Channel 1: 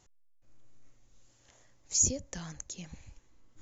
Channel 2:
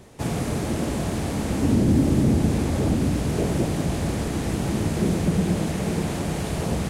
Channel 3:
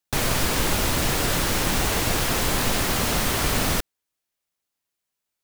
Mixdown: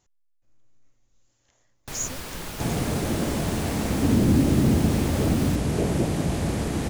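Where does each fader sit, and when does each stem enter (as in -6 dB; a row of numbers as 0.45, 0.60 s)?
-4.5, -0.5, -13.0 dB; 0.00, 2.40, 1.75 s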